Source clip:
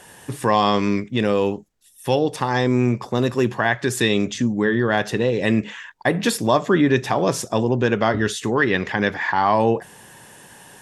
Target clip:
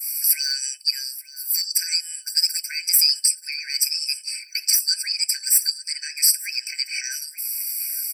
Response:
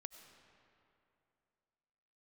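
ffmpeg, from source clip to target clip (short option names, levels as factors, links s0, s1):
-filter_complex "[0:a]adynamicequalizer=threshold=0.0126:dfrequency=2700:dqfactor=0.87:tfrequency=2700:tqfactor=0.87:attack=5:release=100:ratio=0.375:range=3:mode=cutabove:tftype=bell,acrossover=split=1700[s0][s1];[s0]acompressor=threshold=0.0562:ratio=6[s2];[s1]alimiter=level_in=1.06:limit=0.0631:level=0:latency=1:release=244,volume=0.944[s3];[s2][s3]amix=inputs=2:normalize=0,aexciter=amount=15.7:drive=4.3:freq=2500,asoftclip=type=hard:threshold=0.562,asetrate=58653,aresample=44100,asuperstop=centerf=2800:order=20:qfactor=7.6,asplit=2[s4][s5];[s5]aecho=0:1:880|1760:0.119|0.0238[s6];[s4][s6]amix=inputs=2:normalize=0,afftfilt=real='re*eq(mod(floor(b*sr/1024/1500),2),1)':imag='im*eq(mod(floor(b*sr/1024/1500),2),1)':win_size=1024:overlap=0.75,volume=0.841"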